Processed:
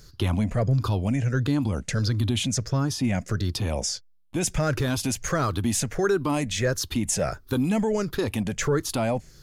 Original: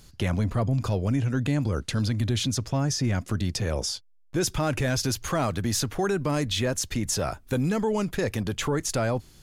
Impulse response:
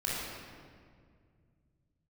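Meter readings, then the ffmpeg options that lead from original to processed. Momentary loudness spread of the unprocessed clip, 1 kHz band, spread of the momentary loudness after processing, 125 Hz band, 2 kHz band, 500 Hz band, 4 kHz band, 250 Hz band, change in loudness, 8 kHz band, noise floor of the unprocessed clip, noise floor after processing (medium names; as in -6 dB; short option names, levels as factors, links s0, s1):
3 LU, +0.5 dB, 4 LU, +1.0 dB, +1.0 dB, +1.5 dB, -0.5 dB, +1.5 dB, +1.0 dB, +1.5 dB, -54 dBFS, -52 dBFS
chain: -af "afftfilt=real='re*pow(10,10/40*sin(2*PI*(0.56*log(max(b,1)*sr/1024/100)/log(2)-(-1.5)*(pts-256)/sr)))':imag='im*pow(10,10/40*sin(2*PI*(0.56*log(max(b,1)*sr/1024/100)/log(2)-(-1.5)*(pts-256)/sr)))':win_size=1024:overlap=0.75"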